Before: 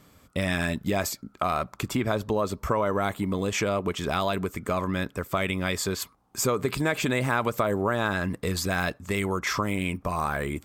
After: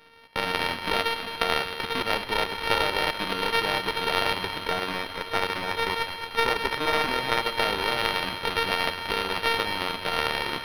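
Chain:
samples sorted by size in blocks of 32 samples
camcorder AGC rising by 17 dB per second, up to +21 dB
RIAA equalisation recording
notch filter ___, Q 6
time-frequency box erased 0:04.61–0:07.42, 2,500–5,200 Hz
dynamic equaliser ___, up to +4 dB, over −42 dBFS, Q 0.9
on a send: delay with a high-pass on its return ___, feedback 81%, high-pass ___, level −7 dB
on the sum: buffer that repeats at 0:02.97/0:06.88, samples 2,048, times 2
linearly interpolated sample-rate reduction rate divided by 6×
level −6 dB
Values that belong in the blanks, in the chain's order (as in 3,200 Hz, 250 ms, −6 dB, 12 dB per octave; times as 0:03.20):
1,700 Hz, 640 Hz, 108 ms, 1,500 Hz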